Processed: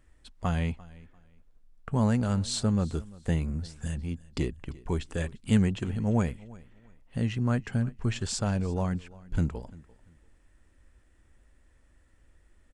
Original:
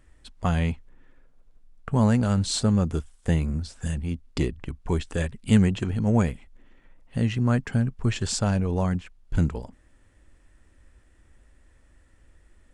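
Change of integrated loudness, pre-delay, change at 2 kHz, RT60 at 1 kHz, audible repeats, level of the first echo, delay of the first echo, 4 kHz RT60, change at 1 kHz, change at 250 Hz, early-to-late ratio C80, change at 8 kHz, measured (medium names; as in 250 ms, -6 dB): -4.5 dB, no reverb, -4.5 dB, no reverb, 2, -21.5 dB, 344 ms, no reverb, -4.5 dB, -4.5 dB, no reverb, -4.5 dB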